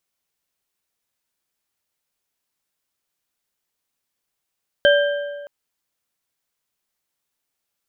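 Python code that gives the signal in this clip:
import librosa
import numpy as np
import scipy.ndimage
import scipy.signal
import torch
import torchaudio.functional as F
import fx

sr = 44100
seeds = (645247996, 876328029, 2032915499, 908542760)

y = fx.strike_metal(sr, length_s=0.62, level_db=-10.5, body='bar', hz=577.0, decay_s=1.57, tilt_db=4.0, modes=3)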